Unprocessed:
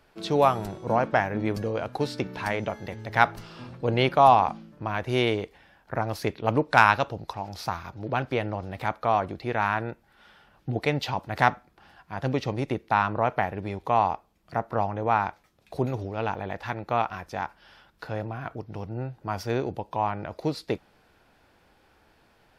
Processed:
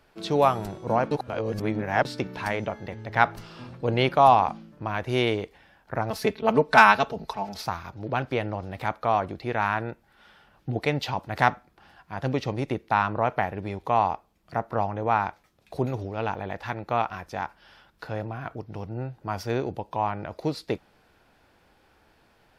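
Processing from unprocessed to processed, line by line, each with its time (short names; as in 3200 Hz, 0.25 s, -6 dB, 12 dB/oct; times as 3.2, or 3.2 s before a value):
1.11–2.05 reverse
2.66–3.31 high shelf 6000 Hz -10.5 dB
6.1–7.62 comb 4.6 ms, depth 99%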